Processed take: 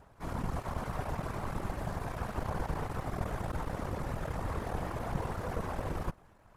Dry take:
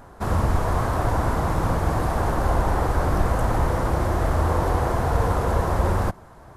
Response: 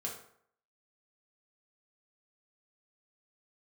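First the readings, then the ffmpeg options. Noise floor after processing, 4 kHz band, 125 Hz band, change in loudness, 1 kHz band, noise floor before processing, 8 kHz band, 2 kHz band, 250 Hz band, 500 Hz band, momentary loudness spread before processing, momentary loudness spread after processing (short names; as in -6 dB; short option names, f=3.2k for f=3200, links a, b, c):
-60 dBFS, -11.5 dB, -14.5 dB, -14.5 dB, -14.5 dB, -46 dBFS, -13.5 dB, -12.5 dB, -12.0 dB, -14.0 dB, 1 LU, 2 LU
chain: -af "aeval=exprs='max(val(0),0)':c=same,afftfilt=real='hypot(re,im)*cos(2*PI*random(0))':imag='hypot(re,im)*sin(2*PI*random(1))':win_size=512:overlap=0.75,volume=-4.5dB"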